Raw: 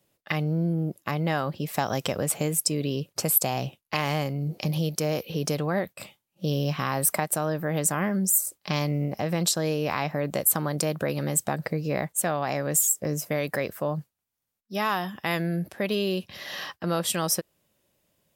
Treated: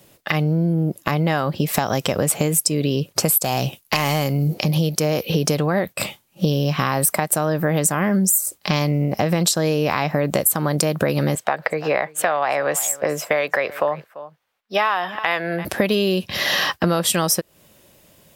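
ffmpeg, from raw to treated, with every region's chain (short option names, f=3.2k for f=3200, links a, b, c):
-filter_complex "[0:a]asettb=1/sr,asplit=3[a][b][c];[a]atrim=end=3.444[d];[b]atrim=start=3.44:end=4.54,asetpts=PTS-STARTPTS,afade=t=in:d=0.004:c=qsin,afade=t=out:st=1.096:d=0.004:c=qsin,highshelf=f=4.6k:g=9,aeval=exprs='clip(val(0),-1,0.141)':c=same[e];[c]atrim=start=4.536[f];[d][e]acrossfade=d=0.004:c1=hsin:c2=qsin[g];[g][f]acrossfade=d=0.004:c1=qsin:c2=hsin,asettb=1/sr,asplit=3[h][i][j];[h]atrim=end=11.354[k];[i]atrim=start=11.35:end=15.65,asetpts=PTS-STARTPTS,afade=t=in:d=0.004:c=qsin,afade=t=out:st=4.296:d=0.004:c=qsin,acrossover=split=480 3700:gain=0.1 1 0.126[l][m][n];[l][m][n]amix=inputs=3:normalize=0,aecho=1:1:340:0.0794,atrim=end_sample=189630[o];[j]atrim=start=15.646[p];[k][o]acrossfade=d=0.004:c1=hsin:c2=qsin[q];[q][p]acrossfade=d=0.004:c1=qsin:c2=hsin,acompressor=threshold=-35dB:ratio=6,alimiter=level_in=20.5dB:limit=-1dB:release=50:level=0:latency=1,volume=-2dB"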